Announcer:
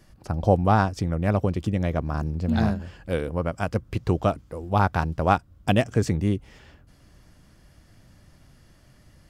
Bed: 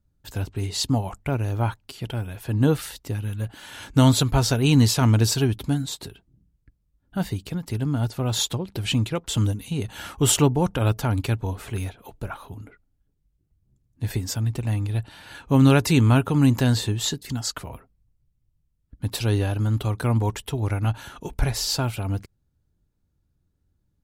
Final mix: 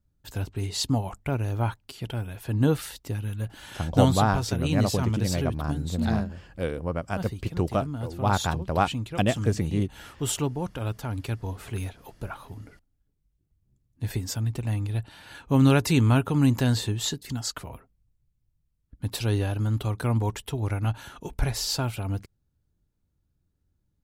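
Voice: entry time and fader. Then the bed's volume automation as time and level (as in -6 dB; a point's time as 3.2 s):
3.50 s, -3.0 dB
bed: 3.93 s -2.5 dB
4.19 s -9 dB
11.02 s -9 dB
11.73 s -3 dB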